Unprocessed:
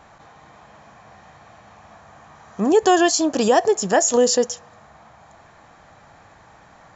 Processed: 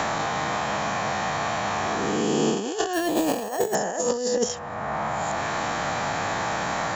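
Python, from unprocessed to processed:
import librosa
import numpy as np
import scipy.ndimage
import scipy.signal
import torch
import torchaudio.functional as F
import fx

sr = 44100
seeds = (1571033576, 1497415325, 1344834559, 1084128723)

y = fx.spec_swells(x, sr, rise_s=1.18)
y = fx.over_compress(y, sr, threshold_db=-20.0, ratio=-0.5)
y = fx.resample_bad(y, sr, factor=6, down='filtered', up='hold', at=(2.93, 3.75))
y = fx.band_squash(y, sr, depth_pct=100)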